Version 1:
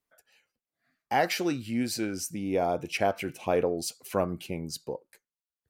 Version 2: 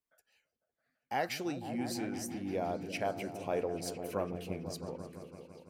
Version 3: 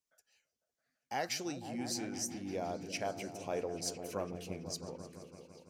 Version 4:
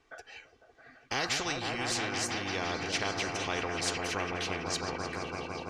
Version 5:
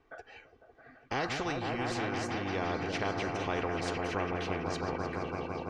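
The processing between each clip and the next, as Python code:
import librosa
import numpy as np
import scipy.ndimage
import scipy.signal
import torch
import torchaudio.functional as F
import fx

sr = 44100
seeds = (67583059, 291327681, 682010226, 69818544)

y1 = fx.echo_opening(x, sr, ms=167, hz=200, octaves=1, feedback_pct=70, wet_db=-3)
y1 = y1 * librosa.db_to_amplitude(-8.5)
y2 = fx.peak_eq(y1, sr, hz=6100.0, db=11.0, octaves=0.96)
y2 = y2 * librosa.db_to_amplitude(-3.5)
y3 = scipy.signal.sosfilt(scipy.signal.butter(2, 2200.0, 'lowpass', fs=sr, output='sos'), y2)
y3 = y3 + 0.63 * np.pad(y3, (int(2.6 * sr / 1000.0), 0))[:len(y3)]
y3 = fx.spectral_comp(y3, sr, ratio=4.0)
y3 = y3 * librosa.db_to_amplitude(6.5)
y4 = fx.lowpass(y3, sr, hz=1100.0, slope=6)
y4 = y4 * librosa.db_to_amplitude(3.0)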